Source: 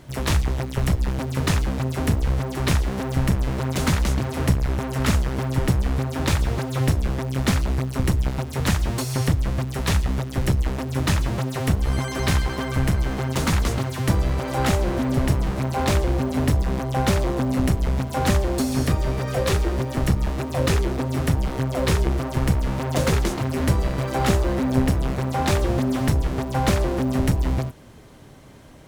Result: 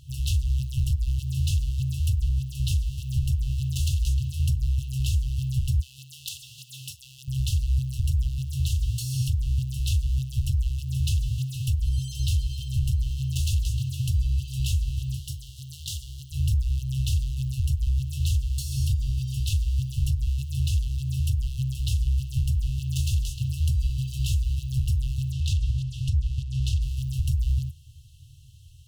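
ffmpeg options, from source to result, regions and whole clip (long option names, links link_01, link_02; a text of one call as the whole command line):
ffmpeg -i in.wav -filter_complex "[0:a]asettb=1/sr,asplit=3[link_01][link_02][link_03];[link_01]atrim=end=5.804[link_04];[link_02]atrim=start=5.8:end=7.28,asetpts=PTS-STARTPTS,afade=type=in:duration=0.004:curve=qsin,afade=type=out:start_time=1.476:duration=0.004:curve=qsin,highpass=frequency=230:width=0.5412,highpass=frequency=230:width=1.3066,aeval=exprs='(mod(3.76*val(0)+1,2)-1)/3.76':channel_layout=same[link_05];[link_03]atrim=start=7.276[link_06];[link_04][link_05]acrossfade=duration=0.004:curve1=hsin:curve2=qsin[link_07];[link_07][link_06]acrossfade=duration=0.004:curve1=qsin:curve2=hsin,asettb=1/sr,asplit=3[link_08][link_09][link_10];[link_08]atrim=end=15.174[link_11];[link_09]atrim=start=15.17:end=16.32,asetpts=PTS-STARTPTS,afade=type=in:duration=0.004:curve=qsin,afade=type=out:start_time=1.146:duration=0.004:curve=qsin,highpass=frequency=540:poles=1,bandreject=frequency=2600:width=5.8[link_12];[link_10]atrim=start=16.316[link_13];[link_11][link_12]acrossfade=duration=0.004:curve1=hsin:curve2=qsin[link_14];[link_14][link_13]acrossfade=duration=0.004:curve1=qsin:curve2=hsin,asettb=1/sr,asplit=3[link_15][link_16][link_17];[link_15]atrim=end=25.324[link_18];[link_16]atrim=start=25.32:end=26.82,asetpts=PTS-STARTPTS,afade=type=in:duration=0.004:curve=qsin,afade=type=out:start_time=1.496:duration=0.004:curve=qsin,equalizer=frequency=15000:width=1.1:gain=-7,adynamicsmooth=sensitivity=5:basefreq=5200[link_19];[link_17]atrim=start=26.816[link_20];[link_18][link_19]acrossfade=duration=0.004:curve1=hsin:curve2=qsin[link_21];[link_21][link_20]acrossfade=duration=0.004:curve1=qsin:curve2=hsin,afftfilt=real='re*(1-between(b*sr/4096,150,2600))':imag='im*(1-between(b*sr/4096,150,2600))':win_size=4096:overlap=0.75,equalizer=frequency=79:width=2:gain=9,alimiter=limit=-12.5dB:level=0:latency=1:release=167,volume=-3.5dB" out.wav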